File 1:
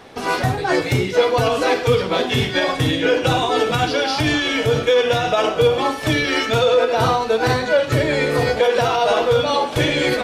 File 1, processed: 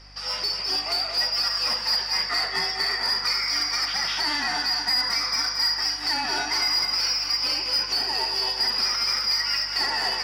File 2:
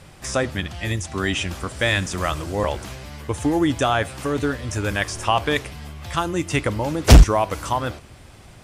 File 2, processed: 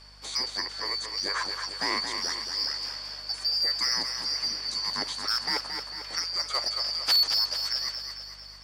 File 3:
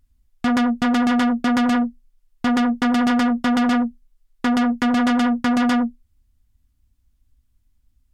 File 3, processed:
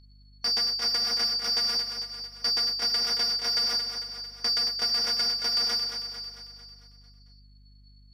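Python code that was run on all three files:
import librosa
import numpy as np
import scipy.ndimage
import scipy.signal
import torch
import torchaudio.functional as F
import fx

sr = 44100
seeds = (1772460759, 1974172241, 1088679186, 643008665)

p1 = fx.band_shuffle(x, sr, order='2341')
p2 = fx.low_shelf(p1, sr, hz=460.0, db=-7.5)
p3 = np.clip(10.0 ** (10.0 / 20.0) * p2, -1.0, 1.0) / 10.0 ** (10.0 / 20.0)
p4 = fx.lowpass(p3, sr, hz=2200.0, slope=6)
p5 = 10.0 ** (-16.0 / 20.0) * np.tanh(p4 / 10.0 ** (-16.0 / 20.0))
p6 = scipy.signal.sosfilt(scipy.signal.butter(4, 180.0, 'highpass', fs=sr, output='sos'), p5)
p7 = p6 + fx.echo_feedback(p6, sr, ms=224, feedback_pct=54, wet_db=-7, dry=0)
p8 = fx.add_hum(p7, sr, base_hz=50, snr_db=23)
y = fx.peak_eq(p8, sr, hz=250.0, db=-7.5, octaves=2.6)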